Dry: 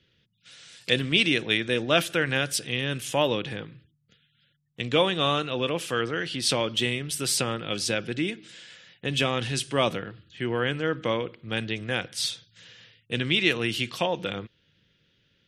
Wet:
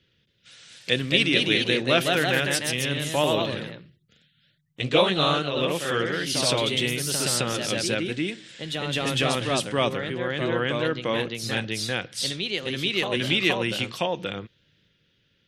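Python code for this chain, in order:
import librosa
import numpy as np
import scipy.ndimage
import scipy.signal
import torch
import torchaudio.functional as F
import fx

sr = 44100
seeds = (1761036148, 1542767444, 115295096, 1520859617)

y = fx.echo_pitch(x, sr, ms=272, semitones=1, count=2, db_per_echo=-3.0)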